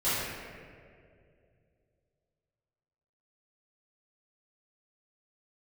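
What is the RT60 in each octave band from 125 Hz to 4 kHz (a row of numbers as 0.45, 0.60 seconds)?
3.3, 2.7, 2.8, 1.9, 1.8, 1.2 seconds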